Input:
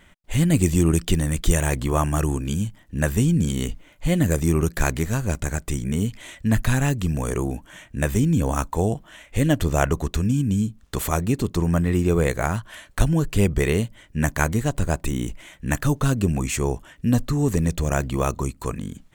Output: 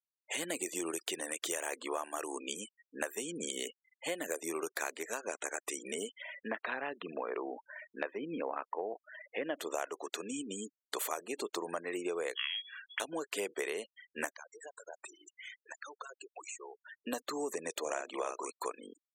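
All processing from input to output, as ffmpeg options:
ffmpeg -i in.wav -filter_complex "[0:a]asettb=1/sr,asplit=3[link_01][link_02][link_03];[link_01]atrim=end=6.224[link_04];[link_02]atrim=start=6.22:end=9.58,asetpts=PTS-STARTPTS,afade=type=in:duration=0.004:curve=qsin,afade=type=out:start_time=3.356:duration=0.004:curve=qsin,lowpass=2600,equalizer=frequency=76:width_type=o:width=1.5:gain=4[link_05];[link_03]atrim=start=9.576[link_06];[link_04][link_05]acrossfade=duration=0.004:curve1=hsin:curve2=qsin[link_07];[link_07][link_06]acrossfade=duration=0.004:curve1=qsin:curve2=hsin,asettb=1/sr,asplit=3[link_08][link_09][link_10];[link_08]atrim=end=12.354[link_11];[link_09]atrim=start=12.35:end=13,asetpts=PTS-STARTPTS,afade=type=in:duration=0.004:curve=qsin,afade=type=out:start_time=0.646:duration=0.004:curve=qsin,lowpass=frequency=2900:width_type=q:width=0.5098,lowpass=frequency=2900:width_type=q:width=0.6013,lowpass=frequency=2900:width_type=q:width=0.9,lowpass=frequency=2900:width_type=q:width=2.563,afreqshift=-3400,highpass=frequency=1300:poles=1[link_12];[link_10]atrim=start=12.996[link_13];[link_11][link_12]acrossfade=duration=0.004:curve1=hsin:curve2=qsin[link_14];[link_14][link_13]acrossfade=duration=0.004:curve1=qsin:curve2=hsin,asettb=1/sr,asplit=3[link_15][link_16][link_17];[link_15]atrim=end=14.364[link_18];[link_16]atrim=start=14.36:end=17.07,asetpts=PTS-STARTPTS,afade=type=in:duration=0.004:curve=qsin,afade=type=out:start_time=2.706:duration=0.004:curve=qsin,highpass=frequency=680:poles=1,equalizer=frequency=6200:width_type=o:width=0.95:gain=4,acompressor=threshold=-38dB:ratio=16:attack=3.2:release=140:knee=1:detection=peak[link_19];[link_17]atrim=start=17.066[link_20];[link_18][link_19]acrossfade=duration=0.004:curve1=hsin:curve2=qsin[link_21];[link_21][link_20]acrossfade=duration=0.004:curve1=qsin:curve2=hsin,asettb=1/sr,asplit=3[link_22][link_23][link_24];[link_22]atrim=end=17.814[link_25];[link_23]atrim=start=17.81:end=18.5,asetpts=PTS-STARTPTS,afade=type=in:duration=0.004:curve=qsin,afade=type=out:start_time=0.686:duration=0.004:curve=qsin,lowpass=frequency=10000:width=0.5412,lowpass=frequency=10000:width=1.3066,asplit=2[link_26][link_27];[link_27]adelay=46,volume=-5dB[link_28];[link_26][link_28]amix=inputs=2:normalize=0,atrim=end_sample=30429[link_29];[link_24]atrim=start=18.496[link_30];[link_25][link_29]acrossfade=duration=0.004:curve1=hsin:curve2=qsin[link_31];[link_31][link_30]acrossfade=duration=0.004:curve1=qsin:curve2=hsin,highpass=frequency=410:width=0.5412,highpass=frequency=410:width=1.3066,afftfilt=real='re*gte(hypot(re,im),0.0126)':imag='im*gte(hypot(re,im),0.0126)':win_size=1024:overlap=0.75,acompressor=threshold=-34dB:ratio=6" out.wav

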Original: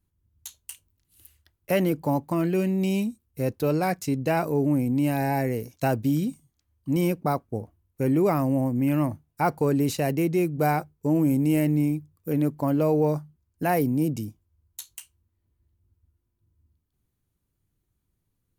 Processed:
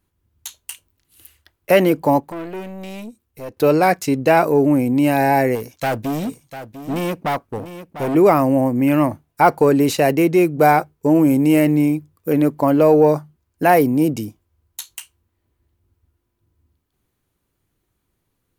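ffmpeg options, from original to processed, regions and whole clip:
ffmpeg -i in.wav -filter_complex "[0:a]asettb=1/sr,asplit=3[link_01][link_02][link_03];[link_01]atrim=end=2.204[link_04];[link_02]atrim=start=2.2:end=3.57,asetpts=PTS-STARTPTS,afade=type=in:duration=0.004:curve=qsin,afade=type=out:start_time=1.366:duration=0.004:curve=qsin,acompressor=threshold=-47dB:ratio=1.5:attack=3.2:release=140:knee=1:detection=peak,aeval=exprs='(tanh(50.1*val(0)+0.55)-tanh(0.55))/50.1':channel_layout=same[link_05];[link_03]atrim=start=3.566[link_06];[link_04][link_05]acrossfade=duration=0.004:curve1=hsin:curve2=qsin[link_07];[link_07][link_06]acrossfade=duration=0.004:curve1=qsin:curve2=hsin,asettb=1/sr,asplit=3[link_08][link_09][link_10];[link_08]atrim=end=5.554[link_11];[link_09]atrim=start=5.55:end=8.15,asetpts=PTS-STARTPTS,afade=type=in:duration=0.004:curve=qsin,afade=type=out:start_time=2.596:duration=0.004:curve=qsin,equalizer=frequency=400:width=0.83:gain=-3.5,volume=27dB,asoftclip=hard,volume=-27dB,aecho=1:1:698:0.237,atrim=end_sample=114660[link_12];[link_10]atrim=start=8.146[link_13];[link_11][link_12]acrossfade=duration=0.004:curve1=hsin:curve2=qsin[link_14];[link_14][link_13]acrossfade=duration=0.004:curve1=qsin:curve2=hsin,bass=frequency=250:gain=-10,treble=frequency=4000:gain=-5,acontrast=75,volume=5dB" out.wav

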